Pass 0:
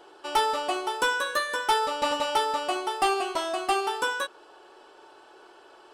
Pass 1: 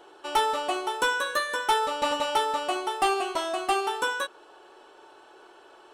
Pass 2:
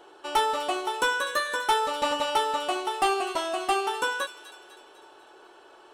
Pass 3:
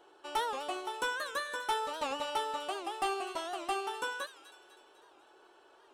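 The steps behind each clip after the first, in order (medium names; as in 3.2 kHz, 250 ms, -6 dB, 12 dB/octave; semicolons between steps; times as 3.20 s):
band-stop 4.9 kHz, Q 9.8
feedback echo behind a high-pass 250 ms, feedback 51%, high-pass 2.1 kHz, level -12.5 dB
warped record 78 rpm, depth 160 cents; trim -9 dB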